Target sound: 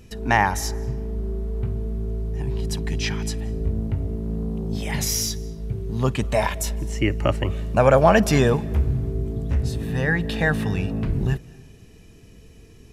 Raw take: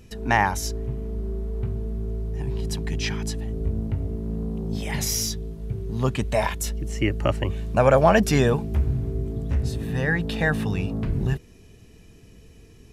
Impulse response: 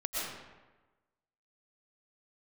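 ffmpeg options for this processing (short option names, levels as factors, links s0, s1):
-filter_complex "[0:a]asplit=2[s0][s1];[1:a]atrim=start_sample=2205,adelay=53[s2];[s1][s2]afir=irnorm=-1:irlink=0,volume=0.0531[s3];[s0][s3]amix=inputs=2:normalize=0,volume=1.19"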